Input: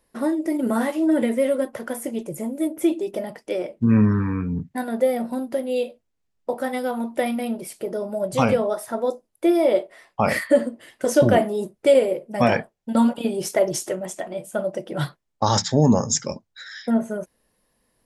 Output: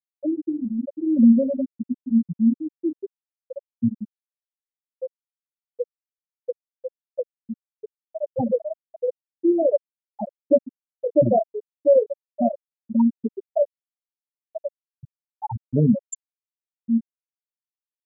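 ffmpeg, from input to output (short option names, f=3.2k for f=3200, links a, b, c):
-filter_complex "[0:a]asettb=1/sr,asplit=3[a][b][c];[a]atrim=end=0.884[d];[b]atrim=start=0.88:end=3.03,asetpts=PTS-STARTPTS,afade=t=in:d=0.004:c=qsin,afade=t=out:st=2.146:d=0.004:c=qsin,lowshelf=f=280:t=q:w=3:g=7[e];[c]atrim=start=3.026[f];[d][e]acrossfade=d=0.004:c1=hsin:c2=qsin[g];[g][f]acrossfade=d=0.004:c1=qsin:c2=hsin,asettb=1/sr,asplit=3[h][i][j];[h]atrim=end=3.884[k];[i]atrim=start=3.88:end=5.8,asetpts=PTS-STARTPTS,afade=t=in:d=0.004:c=qsin,afade=t=out:st=1.916:d=0.004:c=qsin,acompressor=threshold=-29dB:ratio=2:attack=3.2:release=140:knee=1:detection=peak[l];[j]atrim=start=5.796[m];[k][l]acrossfade=d=0.004:c1=hsin:c2=qsin[n];[n][m]acrossfade=d=0.004:c1=qsin:c2=hsin,asplit=4[o][p][q][r];[o]atrim=end=14.912[s];[p]atrim=start=14.848:end=14.912[t];[q]atrim=start=14.848:end=14.912[u];[r]atrim=start=15.028[v];[s][t]acrossfade=d=0.004:c1=hsin:c2=hsin[w];[w][u]acrossfade=d=0.004:c1=hsin:c2=hsin[x];[x][v]acrossfade=d=0.004:c1=hsin:c2=hsin,afftfilt=real='re*gte(hypot(re,im),0.794)':imag='im*gte(hypot(re,im),0.794)':win_size=1024:overlap=0.75"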